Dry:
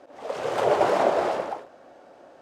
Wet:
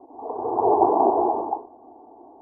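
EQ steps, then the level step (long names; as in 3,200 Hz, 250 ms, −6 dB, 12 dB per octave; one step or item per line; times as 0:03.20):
Chebyshev low-pass with heavy ripple 1,200 Hz, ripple 3 dB
phaser with its sweep stopped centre 830 Hz, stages 8
+8.0 dB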